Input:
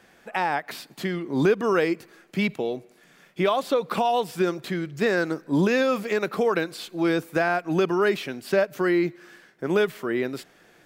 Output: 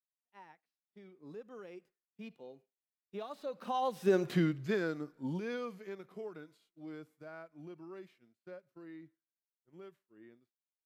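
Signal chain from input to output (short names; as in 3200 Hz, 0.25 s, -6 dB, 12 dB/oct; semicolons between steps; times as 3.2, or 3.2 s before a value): Doppler pass-by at 4.31, 26 m/s, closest 3.2 m; harmonic-percussive split percussive -12 dB; expander -59 dBFS; gain +2.5 dB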